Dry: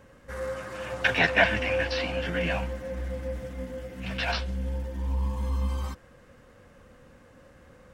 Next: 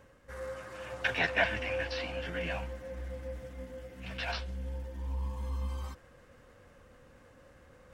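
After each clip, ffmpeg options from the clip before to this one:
ffmpeg -i in.wav -af "areverse,acompressor=mode=upward:threshold=-43dB:ratio=2.5,areverse,equalizer=frequency=200:width=1.6:gain=-4,volume=-7dB" out.wav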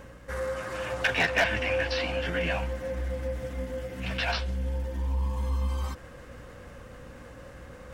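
ffmpeg -i in.wav -filter_complex "[0:a]asplit=2[link_01][link_02];[link_02]acompressor=threshold=-42dB:ratio=6,volume=3dB[link_03];[link_01][link_03]amix=inputs=2:normalize=0,aeval=exprs='val(0)+0.002*(sin(2*PI*60*n/s)+sin(2*PI*2*60*n/s)/2+sin(2*PI*3*60*n/s)/3+sin(2*PI*4*60*n/s)/4+sin(2*PI*5*60*n/s)/5)':channel_layout=same,asoftclip=type=hard:threshold=-21dB,volume=3.5dB" out.wav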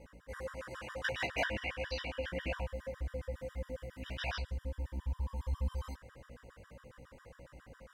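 ffmpeg -i in.wav -af "flanger=delay=15.5:depth=3.6:speed=1.6,afftfilt=real='re*gt(sin(2*PI*7.3*pts/sr)*(1-2*mod(floor(b*sr/1024/970),2)),0)':imag='im*gt(sin(2*PI*7.3*pts/sr)*(1-2*mod(floor(b*sr/1024/970),2)),0)':win_size=1024:overlap=0.75,volume=-4dB" out.wav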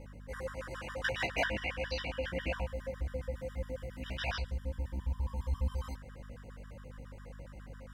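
ffmpeg -i in.wav -af "aeval=exprs='val(0)+0.00316*(sin(2*PI*50*n/s)+sin(2*PI*2*50*n/s)/2+sin(2*PI*3*50*n/s)/3+sin(2*PI*4*50*n/s)/4+sin(2*PI*5*50*n/s)/5)':channel_layout=same,volume=2dB" out.wav

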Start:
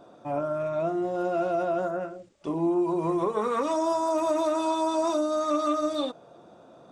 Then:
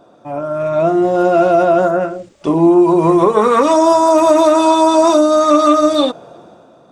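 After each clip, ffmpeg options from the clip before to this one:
ffmpeg -i in.wav -af "dynaudnorm=framelen=100:gausssize=13:maxgain=11dB,volume=4.5dB" out.wav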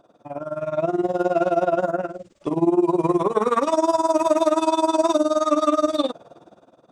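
ffmpeg -i in.wav -af "tremolo=f=19:d=0.87,volume=-5.5dB" out.wav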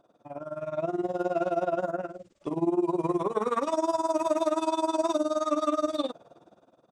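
ffmpeg -i in.wav -af "aresample=32000,aresample=44100,volume=-7.5dB" out.wav

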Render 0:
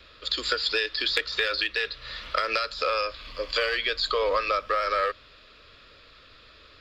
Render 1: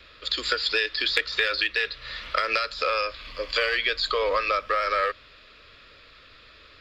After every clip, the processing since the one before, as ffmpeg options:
ffmpeg -i in.wav -af "equalizer=frequency=2100:width=1.7:gain=4" out.wav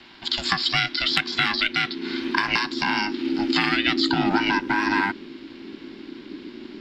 ffmpeg -i in.wav -af "asubboost=boost=11:cutoff=150,aeval=exprs='val(0)*sin(2*PI*300*n/s)':channel_layout=same,volume=5.5dB" out.wav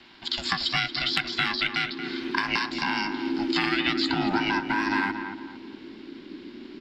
ffmpeg -i in.wav -filter_complex "[0:a]asplit=2[link_01][link_02];[link_02]adelay=229,lowpass=frequency=1900:poles=1,volume=-7.5dB,asplit=2[link_03][link_04];[link_04]adelay=229,lowpass=frequency=1900:poles=1,volume=0.37,asplit=2[link_05][link_06];[link_06]adelay=229,lowpass=frequency=1900:poles=1,volume=0.37,asplit=2[link_07][link_08];[link_08]adelay=229,lowpass=frequency=1900:poles=1,volume=0.37[link_09];[link_01][link_03][link_05][link_07][link_09]amix=inputs=5:normalize=0,volume=-4dB" out.wav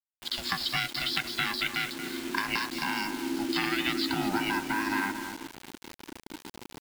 ffmpeg -i in.wav -af "acrusher=bits=5:mix=0:aa=0.000001,volume=-4dB" out.wav

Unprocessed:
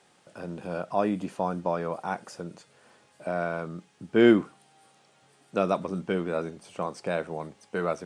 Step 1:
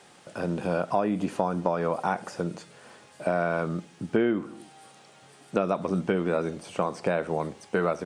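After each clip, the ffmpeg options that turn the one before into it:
ffmpeg -i in.wav -filter_complex "[0:a]acrossover=split=2900[link_01][link_02];[link_02]acompressor=threshold=-51dB:ratio=4:attack=1:release=60[link_03];[link_01][link_03]amix=inputs=2:normalize=0,asplit=2[link_04][link_05];[link_05]adelay=75,lowpass=frequency=1000:poles=1,volume=-21dB,asplit=2[link_06][link_07];[link_07]adelay=75,lowpass=frequency=1000:poles=1,volume=0.51,asplit=2[link_08][link_09];[link_09]adelay=75,lowpass=frequency=1000:poles=1,volume=0.51,asplit=2[link_10][link_11];[link_11]adelay=75,lowpass=frequency=1000:poles=1,volume=0.51[link_12];[link_04][link_06][link_08][link_10][link_12]amix=inputs=5:normalize=0,acompressor=threshold=-29dB:ratio=8,volume=8dB" out.wav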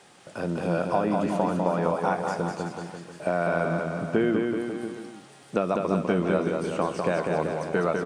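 ffmpeg -i in.wav -af "aecho=1:1:200|380|542|687.8|819:0.631|0.398|0.251|0.158|0.1" out.wav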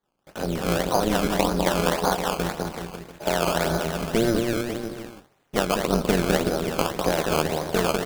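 ffmpeg -i in.wav -af "agate=range=-33dB:threshold=-39dB:ratio=3:detection=peak,tremolo=f=230:d=0.889,acrusher=samples=16:mix=1:aa=0.000001:lfo=1:lforange=16:lforate=1.8,volume=6dB" out.wav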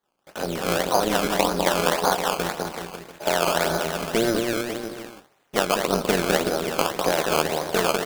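ffmpeg -i in.wav -af "lowshelf=frequency=230:gain=-11.5,volume=3dB" out.wav

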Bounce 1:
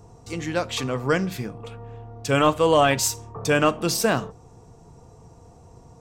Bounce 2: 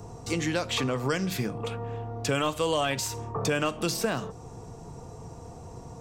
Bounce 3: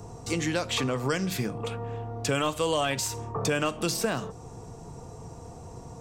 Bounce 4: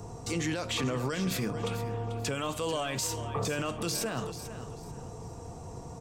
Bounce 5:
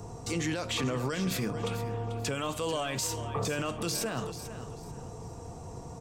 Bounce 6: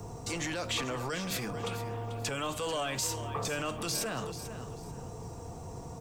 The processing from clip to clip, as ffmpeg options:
ffmpeg -i in.wav -filter_complex "[0:a]asplit=2[link_01][link_02];[link_02]alimiter=limit=-17.5dB:level=0:latency=1:release=117,volume=-3dB[link_03];[link_01][link_03]amix=inputs=2:normalize=0,acrossover=split=100|2900[link_04][link_05][link_06];[link_04]acompressor=threshold=-49dB:ratio=4[link_07];[link_05]acompressor=threshold=-28dB:ratio=4[link_08];[link_06]acompressor=threshold=-36dB:ratio=4[link_09];[link_07][link_08][link_09]amix=inputs=3:normalize=0,volume=1.5dB" out.wav
ffmpeg -i in.wav -af "equalizer=frequency=8500:width_type=o:width=0.77:gain=2.5" out.wav
ffmpeg -i in.wav -af "alimiter=limit=-23dB:level=0:latency=1:release=11,aecho=1:1:440|880|1320:0.251|0.0678|0.0183" out.wav
ffmpeg -i in.wav -af anull out.wav
ffmpeg -i in.wav -filter_complex "[0:a]acrossover=split=600|910[link_01][link_02][link_03];[link_01]asoftclip=type=hard:threshold=-36.5dB[link_04];[link_04][link_02][link_03]amix=inputs=3:normalize=0,acrusher=bits=10:mix=0:aa=0.000001" out.wav

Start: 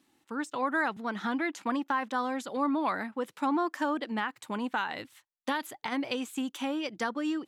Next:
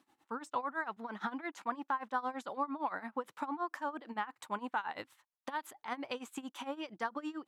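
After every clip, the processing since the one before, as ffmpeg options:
ffmpeg -i in.wav -af "acompressor=threshold=-33dB:ratio=6,tremolo=f=8.8:d=0.87,equalizer=frequency=980:width=0.77:gain=10,volume=-4dB" out.wav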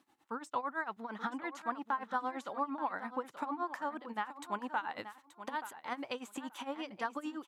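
ffmpeg -i in.wav -af "aecho=1:1:879|1758:0.251|0.0402" out.wav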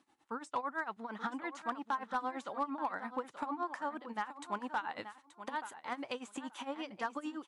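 ffmpeg -i in.wav -af "asoftclip=type=hard:threshold=-26dB" -ar 24000 -c:a libmp3lame -b:a 64k out.mp3

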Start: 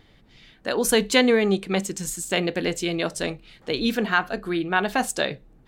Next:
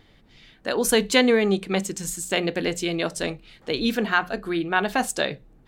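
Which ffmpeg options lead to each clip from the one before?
ffmpeg -i in.wav -af "bandreject=frequency=60:width_type=h:width=6,bandreject=frequency=120:width_type=h:width=6,bandreject=frequency=180:width_type=h:width=6" out.wav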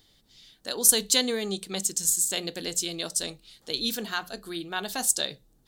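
ffmpeg -i in.wav -af "aexciter=amount=7.1:drive=3.5:freq=3400,volume=-10.5dB" out.wav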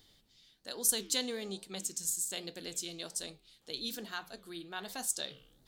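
ffmpeg -i in.wav -af "areverse,acompressor=mode=upward:threshold=-45dB:ratio=2.5,areverse,flanger=delay=8:depth=8.9:regen=-88:speed=1.2:shape=sinusoidal,volume=-5.5dB" out.wav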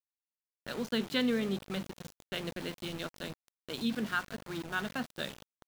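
ffmpeg -i in.wav -af "aeval=exprs='val(0)+0.00224*(sin(2*PI*50*n/s)+sin(2*PI*2*50*n/s)/2+sin(2*PI*3*50*n/s)/3+sin(2*PI*4*50*n/s)/4+sin(2*PI*5*50*n/s)/5)':channel_layout=same,highpass=frequency=110:width=0.5412,highpass=frequency=110:width=1.3066,equalizer=frequency=150:width_type=q:width=4:gain=7,equalizer=frequency=230:width_type=q:width=4:gain=8,equalizer=frequency=780:width_type=q:width=4:gain=-5,equalizer=frequency=1400:width_type=q:width=4:gain=7,lowpass=frequency=3100:width=0.5412,lowpass=frequency=3100:width=1.3066,aeval=exprs='val(0)*gte(abs(val(0)),0.00531)':channel_layout=same,volume=5.5dB" out.wav

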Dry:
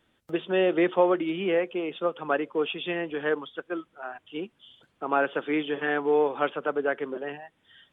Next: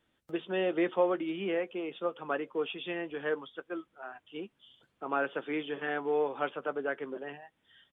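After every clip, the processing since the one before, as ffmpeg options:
ffmpeg -i in.wav -filter_complex "[0:a]asplit=2[link_01][link_02];[link_02]adelay=15,volume=-13dB[link_03];[link_01][link_03]amix=inputs=2:normalize=0,volume=-6.5dB" out.wav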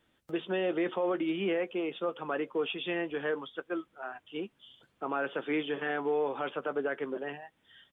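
ffmpeg -i in.wav -af "alimiter=level_in=2dB:limit=-24dB:level=0:latency=1:release=21,volume=-2dB,volume=3.5dB" out.wav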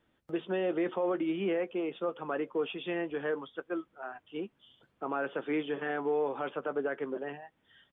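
ffmpeg -i in.wav -af "highshelf=frequency=2900:gain=-10" out.wav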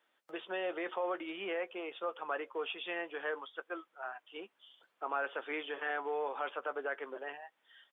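ffmpeg -i in.wav -af "highpass=690,volume=1dB" out.wav

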